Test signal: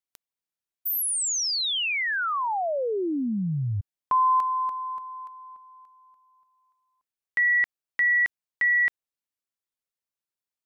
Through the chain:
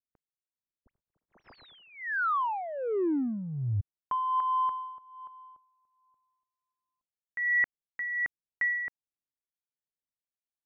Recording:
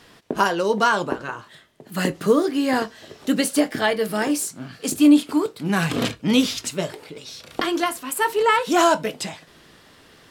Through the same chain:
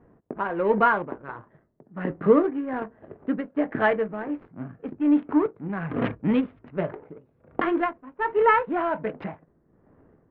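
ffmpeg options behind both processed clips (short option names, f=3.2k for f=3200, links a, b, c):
-af "tremolo=f=1.3:d=0.67,adynamicsmooth=sensitivity=4:basefreq=500,lowpass=f=2.1k:w=0.5412,lowpass=f=2.1k:w=1.3066"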